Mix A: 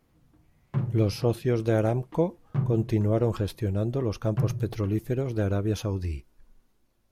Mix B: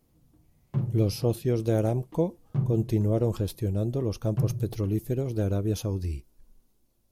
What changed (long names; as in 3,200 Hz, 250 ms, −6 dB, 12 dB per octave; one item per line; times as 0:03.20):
speech: add high-shelf EQ 7,800 Hz +7.5 dB
master: add parametric band 1,600 Hz −8.5 dB 1.8 octaves